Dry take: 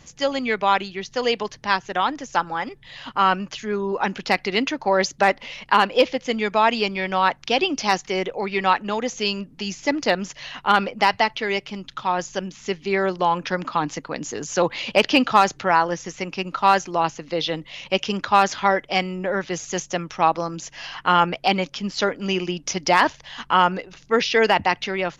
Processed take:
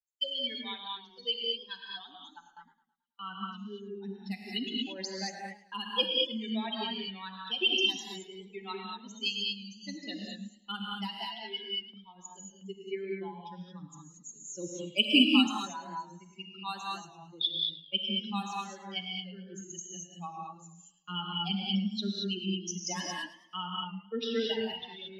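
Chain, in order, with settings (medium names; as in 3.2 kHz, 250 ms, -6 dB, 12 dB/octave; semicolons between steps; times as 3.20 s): expander on every frequency bin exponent 3; FFT filter 130 Hz 0 dB, 230 Hz +10 dB, 580 Hz -14 dB, 2.1 kHz -12 dB, 3.1 kHz +14 dB, 4.7 kHz +5 dB, 6.9 kHz +14 dB; gated-style reverb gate 250 ms rising, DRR -1.5 dB; gate with hold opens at -38 dBFS; three-band isolator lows -19 dB, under 220 Hz, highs -15 dB, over 3.5 kHz; modulated delay 108 ms, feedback 43%, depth 98 cents, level -16.5 dB; trim -5 dB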